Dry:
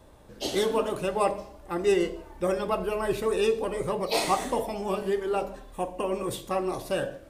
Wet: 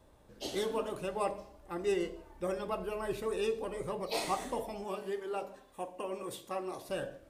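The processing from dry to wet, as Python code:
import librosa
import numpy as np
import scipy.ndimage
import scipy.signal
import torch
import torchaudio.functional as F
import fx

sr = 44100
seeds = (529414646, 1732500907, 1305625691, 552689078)

y = fx.highpass(x, sr, hz=260.0, slope=6, at=(4.84, 6.89))
y = F.gain(torch.from_numpy(y), -8.5).numpy()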